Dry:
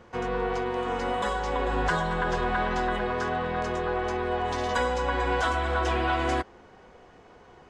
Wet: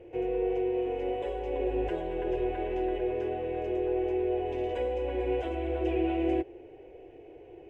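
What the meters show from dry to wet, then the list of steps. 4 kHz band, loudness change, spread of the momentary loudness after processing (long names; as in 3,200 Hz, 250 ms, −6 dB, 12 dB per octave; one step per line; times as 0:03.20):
−13.0 dB, −3.5 dB, 19 LU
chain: mu-law and A-law mismatch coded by mu
drawn EQ curve 130 Hz 0 dB, 200 Hz −20 dB, 330 Hz +12 dB, 750 Hz −2 dB, 1,200 Hz −24 dB, 2,600 Hz +2 dB, 4,200 Hz −22 dB, 10,000 Hz −17 dB
level −7 dB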